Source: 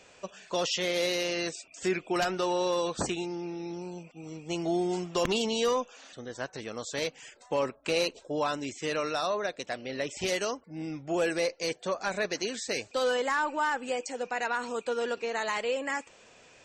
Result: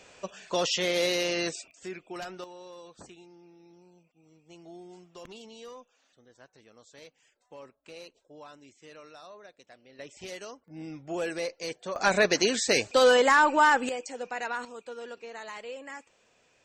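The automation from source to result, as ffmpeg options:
ffmpeg -i in.wav -af "asetnsamples=nb_out_samples=441:pad=0,asendcmd='1.71 volume volume -10.5dB;2.44 volume volume -18.5dB;9.99 volume volume -11dB;10.68 volume volume -4dB;11.96 volume volume 8dB;13.89 volume volume -2.5dB;14.65 volume volume -10dB',volume=2dB" out.wav

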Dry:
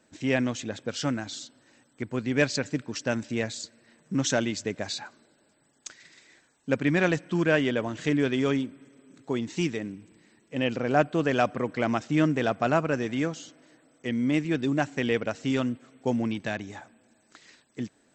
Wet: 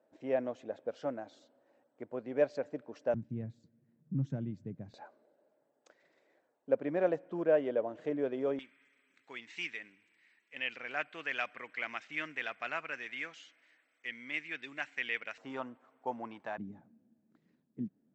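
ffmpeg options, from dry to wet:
ffmpeg -i in.wav -af "asetnsamples=nb_out_samples=441:pad=0,asendcmd='3.14 bandpass f 140;4.94 bandpass f 570;8.59 bandpass f 2200;15.38 bandpass f 920;16.58 bandpass f 190',bandpass=frequency=600:width_type=q:width=2.6:csg=0" out.wav

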